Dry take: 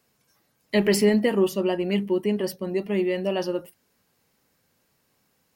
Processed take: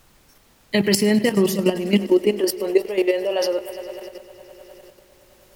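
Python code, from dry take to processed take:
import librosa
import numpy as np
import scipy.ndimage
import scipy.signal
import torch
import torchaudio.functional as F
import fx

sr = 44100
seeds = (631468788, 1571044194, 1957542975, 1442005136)

p1 = x + fx.echo_heads(x, sr, ms=102, heads='first and third', feedback_pct=71, wet_db=-18, dry=0)
p2 = fx.level_steps(p1, sr, step_db=11)
p3 = fx.filter_sweep_highpass(p2, sr, from_hz=110.0, to_hz=490.0, start_s=1.0, end_s=2.9, q=2.9)
p4 = fx.rider(p3, sr, range_db=10, speed_s=0.5)
p5 = p3 + F.gain(torch.from_numpy(p4), -3.0).numpy()
p6 = fx.high_shelf(p5, sr, hz=2400.0, db=8.0)
y = fx.dmg_noise_colour(p6, sr, seeds[0], colour='pink', level_db=-56.0)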